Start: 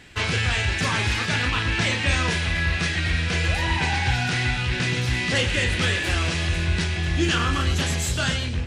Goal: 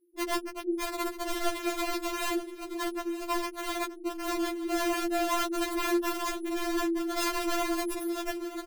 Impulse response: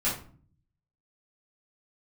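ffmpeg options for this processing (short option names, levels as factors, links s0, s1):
-filter_complex "[0:a]asettb=1/sr,asplit=3[s0][s1][s2];[s0]atrim=end=2.114[s3];[s1]atrim=start=2.11:end=3.78,asetpts=PTS-STARTPTS,afade=t=in:d=0.004:c=qsin,afade=t=out:st=1.666:d=0.004:c=qsin,bandreject=f=60:t=h:w=6,bandreject=f=120:t=h:w=6,bandreject=f=180:t=h:w=6,bandreject=f=240:t=h:w=6,bandreject=f=300:t=h:w=6,bandreject=f=360:t=h:w=6,bandreject=f=420:t=h:w=6[s4];[s2]atrim=start=3.776[s5];[s3][s4]acrossfade=d=0.004:c1=hsin:c2=qsin[s6];[s6][s5]acrossfade=d=0.004:c1=qsin:c2=hsin,afftdn=nr=16:nf=-37,afftfilt=real='re*(1-between(b*sr/4096,510,10000))':imag='im*(1-between(b*sr/4096,510,10000))':win_size=4096:overlap=0.75,highpass=f=210:w=0.5412,highpass=f=210:w=1.3066,asplit=2[s7][s8];[s8]alimiter=level_in=1.33:limit=0.0631:level=0:latency=1:release=455,volume=0.75,volume=1.41[s9];[s7][s9]amix=inputs=2:normalize=0,afreqshift=-37,aeval=exprs='0.251*(cos(1*acos(clip(val(0)/0.251,-1,1)))-cos(1*PI/2))+0.00282*(cos(3*acos(clip(val(0)/0.251,-1,1)))-cos(3*PI/2))+0.002*(cos(8*acos(clip(val(0)/0.251,-1,1)))-cos(8*PI/2))':c=same,aeval=exprs='(mod(14.1*val(0)+1,2)-1)/14.1':c=same,asplit=2[s10][s11];[s11]aecho=0:1:925:0.188[s12];[s10][s12]amix=inputs=2:normalize=0,afftfilt=real='re*4*eq(mod(b,16),0)':imag='im*4*eq(mod(b,16),0)':win_size=2048:overlap=0.75,volume=1.19"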